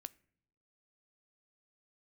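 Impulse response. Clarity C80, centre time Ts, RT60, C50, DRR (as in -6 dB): 26.5 dB, 1 ms, not exponential, 23.0 dB, 16.0 dB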